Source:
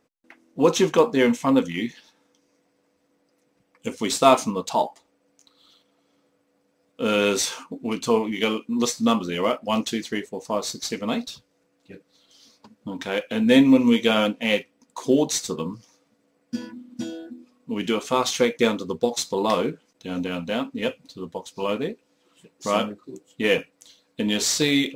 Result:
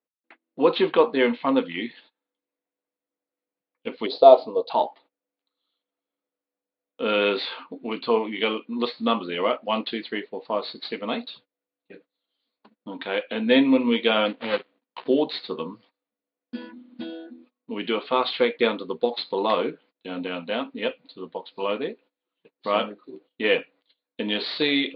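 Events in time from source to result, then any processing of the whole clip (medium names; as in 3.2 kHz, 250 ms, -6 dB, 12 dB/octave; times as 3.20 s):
4.06–4.70 s: FFT filter 100 Hz 0 dB, 200 Hz -11 dB, 460 Hz +7 dB, 680 Hz +6 dB, 1.1 kHz -10 dB, 1.6 kHz -17 dB, 2.5 kHz -17 dB, 4.8 kHz +4 dB, 12 kHz -7 dB
14.26–15.08 s: dead-time distortion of 0.23 ms
whole clip: steep low-pass 4.4 kHz 96 dB/octave; gate -49 dBFS, range -22 dB; high-pass 290 Hz 12 dB/octave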